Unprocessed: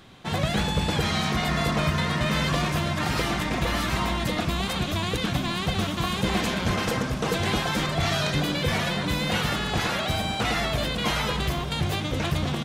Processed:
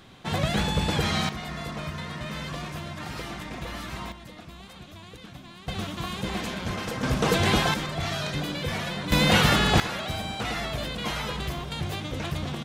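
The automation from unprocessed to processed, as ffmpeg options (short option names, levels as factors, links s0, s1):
-af "asetnsamples=n=441:p=0,asendcmd='1.29 volume volume -10dB;4.12 volume volume -18dB;5.68 volume volume -6dB;7.03 volume volume 3dB;7.74 volume volume -5dB;9.12 volume volume 6dB;9.8 volume volume -5dB',volume=0.944"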